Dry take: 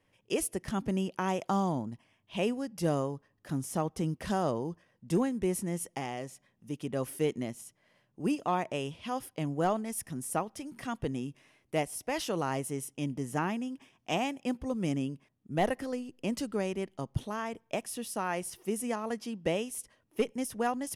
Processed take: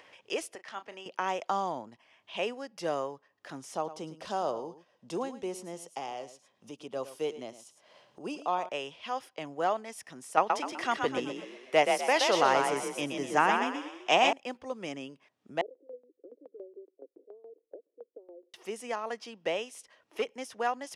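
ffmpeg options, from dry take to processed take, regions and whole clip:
ffmpeg -i in.wav -filter_complex "[0:a]asettb=1/sr,asplit=3[link_01][link_02][link_03];[link_01]atrim=end=0.554[link_04];[link_02]atrim=start=0.55:end=1.06,asetpts=PTS-STARTPTS,afade=type=in:duration=0.004:curve=qsin,afade=type=out:start_time=0.506:duration=0.004:curve=qsin,highpass=frequency=1100:poles=1,aemphasis=mode=reproduction:type=50kf,asplit=2[link_05][link_06];[link_06]adelay=34,volume=-12dB[link_07];[link_05][link_07]amix=inputs=2:normalize=0,atrim=end_sample=22491[link_08];[link_03]atrim=start=1.056[link_09];[link_04][link_08]acrossfade=duration=0.004:curve1=hsin:curve2=qsin[link_10];[link_10][link_09]acrossfade=duration=0.004:curve1=qsin:curve2=hsin,asettb=1/sr,asplit=3[link_11][link_12][link_13];[link_11]atrim=end=3.744[link_14];[link_12]atrim=start=3.74:end=8.69,asetpts=PTS-STARTPTS,afade=type=in:duration=0.004:curve=qsin,afade=type=out:start_time=4.946:duration=0.004:curve=qsin,equalizer=frequency=1900:width_type=o:width=0.76:gain=-10.5,aecho=1:1:107:0.2,atrim=end_sample=218295[link_15];[link_13]atrim=start=8.686[link_16];[link_14][link_15]acrossfade=duration=0.004:curve1=hsin:curve2=qsin[link_17];[link_17][link_16]acrossfade=duration=0.004:curve1=qsin:curve2=hsin,asettb=1/sr,asplit=3[link_18][link_19][link_20];[link_18]atrim=end=10.374[link_21];[link_19]atrim=start=10.37:end=14.33,asetpts=PTS-STARTPTS,afade=type=in:duration=0.004:curve=qsin,afade=type=out:start_time=3.956:duration=0.004:curve=qsin,acontrast=84,asplit=6[link_22][link_23][link_24][link_25][link_26][link_27];[link_23]adelay=125,afreqshift=36,volume=-4.5dB[link_28];[link_24]adelay=250,afreqshift=72,volume=-12.9dB[link_29];[link_25]adelay=375,afreqshift=108,volume=-21.3dB[link_30];[link_26]adelay=500,afreqshift=144,volume=-29.7dB[link_31];[link_27]adelay=625,afreqshift=180,volume=-38.1dB[link_32];[link_22][link_28][link_29][link_30][link_31][link_32]amix=inputs=6:normalize=0,atrim=end_sample=174636[link_33];[link_20]atrim=start=14.326[link_34];[link_21][link_33]acrossfade=duration=0.004:curve1=hsin:curve2=qsin[link_35];[link_35][link_34]acrossfade=duration=0.004:curve1=qsin:curve2=hsin,asettb=1/sr,asplit=3[link_36][link_37][link_38];[link_36]atrim=end=15.614[link_39];[link_37]atrim=start=15.61:end=18.54,asetpts=PTS-STARTPTS,afade=type=in:duration=0.004:curve=qsin,afade=type=out:start_time=2.926:duration=0.004:curve=qsin,asuperpass=centerf=390:order=8:qfactor=1.7,aeval=exprs='val(0)*pow(10,-18*if(lt(mod(7.1*n/s,1),2*abs(7.1)/1000),1-mod(7.1*n/s,1)/(2*abs(7.1)/1000),(mod(7.1*n/s,1)-2*abs(7.1)/1000)/(1-2*abs(7.1)/1000))/20)':channel_layout=same[link_40];[link_38]atrim=start=18.536[link_41];[link_39][link_40]acrossfade=duration=0.004:curve1=hsin:curve2=qsin[link_42];[link_42][link_41]acrossfade=duration=0.004:curve1=qsin:curve2=hsin,highpass=frequency=210:poles=1,acrossover=split=420 6800:gain=0.178 1 0.0891[link_43][link_44][link_45];[link_43][link_44][link_45]amix=inputs=3:normalize=0,acompressor=mode=upward:threshold=-46dB:ratio=2.5,volume=2.5dB" out.wav

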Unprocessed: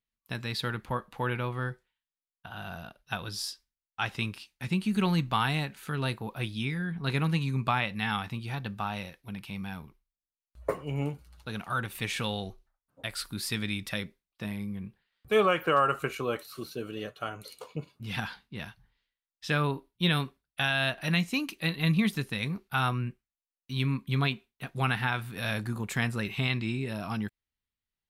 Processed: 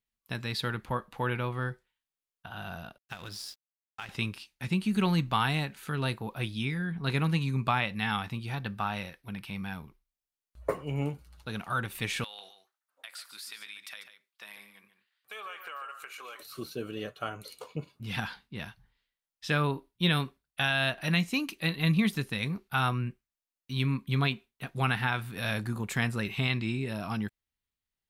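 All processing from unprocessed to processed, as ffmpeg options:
ffmpeg -i in.wav -filter_complex "[0:a]asettb=1/sr,asplit=3[link_01][link_02][link_03];[link_01]atrim=end=2.984[link_04];[link_02]atrim=start=2.98:end=4.09,asetpts=PTS-STARTPTS,afade=type=in:duration=0.004:curve=qsin,afade=type=out:start_time=1.106:duration=0.004:curve=qsin,equalizer=frequency=2100:width=1.3:gain=4,acompressor=threshold=-35dB:ratio=5:attack=3.2:release=140:knee=1:detection=peak,aeval=exprs='sgn(val(0))*max(abs(val(0))-0.00335,0)':channel_layout=same[link_05];[link_03]atrim=start=4.086[link_06];[link_04][link_05]acrossfade=duration=0.004:curve1=hsin:curve2=qsin[link_07];[link_07][link_06]acrossfade=duration=0.004:curve1=qsin:curve2=hsin,asettb=1/sr,asplit=3[link_08][link_09][link_10];[link_08]atrim=end=8.624[link_11];[link_09]atrim=start=8.62:end=9.74,asetpts=PTS-STARTPTS,afade=type=in:duration=0.004:curve=qsin,afade=type=out:start_time=1.116:duration=0.004:curve=qsin,equalizer=frequency=1600:width=1.4:gain=3.5,bandreject=frequency=6900:width=8.2[link_12];[link_10]atrim=start=9.736[link_13];[link_11][link_12]acrossfade=duration=0.004:curve1=hsin:curve2=qsin[link_14];[link_14][link_13]acrossfade=duration=0.004:curve1=qsin:curve2=hsin,asettb=1/sr,asplit=3[link_15][link_16][link_17];[link_15]atrim=end=12.244[link_18];[link_16]atrim=start=12.24:end=16.4,asetpts=PTS-STARTPTS,afade=type=in:duration=0.004:curve=qsin,afade=type=out:start_time=4.156:duration=0.004:curve=qsin,highpass=1100,acompressor=threshold=-41dB:ratio=4:attack=3.2:release=140:knee=1:detection=peak,aecho=1:1:144:0.299,atrim=end_sample=183456[link_19];[link_17]atrim=start=16.396[link_20];[link_18][link_19]acrossfade=duration=0.004:curve1=hsin:curve2=qsin[link_21];[link_21][link_20]acrossfade=duration=0.004:curve1=qsin:curve2=hsin" out.wav

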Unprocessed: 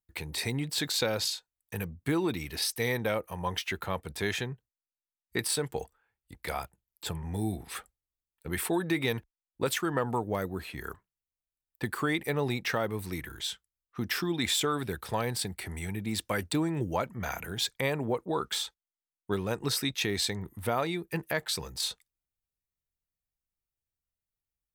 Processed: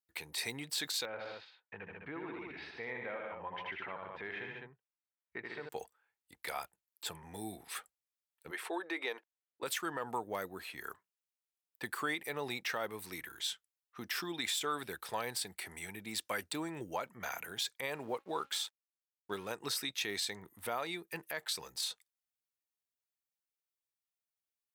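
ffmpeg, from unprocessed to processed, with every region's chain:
ffmpeg -i in.wav -filter_complex "[0:a]asettb=1/sr,asplit=3[link_01][link_02][link_03];[link_01]atrim=end=1.054[link_04];[link_02]atrim=start=1.05:end=5.69,asetpts=PTS-STARTPTS,afade=type=in:duration=0.004:curve=qsin,afade=type=out:start_time=4.636:duration=0.004:curve=qsin,lowpass=frequency=2400:width=0.5412,lowpass=frequency=2400:width=1.3066,aecho=1:1:81|144|206:0.531|0.447|0.398,atrim=end_sample=204624,acompressor=threshold=-35dB:ratio=2:attack=3.2:release=140:knee=1:detection=peak[link_05];[link_03]atrim=start=5.686[link_06];[link_04][link_05]acrossfade=duration=0.004:curve1=hsin:curve2=qsin[link_07];[link_07][link_06]acrossfade=duration=0.004:curve1=qsin:curve2=hsin,asettb=1/sr,asplit=3[link_08][link_09][link_10];[link_08]atrim=end=8.514[link_11];[link_09]atrim=start=8.51:end=9.63,asetpts=PTS-STARTPTS,afade=type=in:duration=0.004:curve=qsin,afade=type=out:start_time=1.116:duration=0.004:curve=qsin,highpass=frequency=340:width=0.5412,highpass=frequency=340:width=1.3066,aemphasis=mode=reproduction:type=75fm[link_12];[link_10]atrim=start=9.626[link_13];[link_11][link_12]acrossfade=duration=0.004:curve1=hsin:curve2=qsin[link_14];[link_14][link_13]acrossfade=duration=0.004:curve1=qsin:curve2=hsin,asettb=1/sr,asplit=3[link_15][link_16][link_17];[link_15]atrim=end=17.934[link_18];[link_16]atrim=start=17.93:end=19.52,asetpts=PTS-STARTPTS,afade=type=in:duration=0.004:curve=qsin,afade=type=out:start_time=1.586:duration=0.004:curve=qsin,bandreject=frequency=273.3:width_type=h:width=4,bandreject=frequency=546.6:width_type=h:width=4,bandreject=frequency=819.9:width_type=h:width=4,bandreject=frequency=1093.2:width_type=h:width=4,bandreject=frequency=1366.5:width_type=h:width=4,bandreject=frequency=1639.8:width_type=h:width=4,bandreject=frequency=1913.1:width_type=h:width=4,bandreject=frequency=2186.4:width_type=h:width=4,bandreject=frequency=2459.7:width_type=h:width=4,bandreject=frequency=2733:width_type=h:width=4,aeval=exprs='sgn(val(0))*max(abs(val(0))-0.00133,0)':channel_layout=same[link_19];[link_17]atrim=start=19.516[link_20];[link_18][link_19]acrossfade=duration=0.004:curve1=hsin:curve2=qsin[link_21];[link_21][link_20]acrossfade=duration=0.004:curve1=qsin:curve2=hsin,highpass=frequency=750:poles=1,alimiter=limit=-22.5dB:level=0:latency=1:release=80,volume=-2.5dB" out.wav

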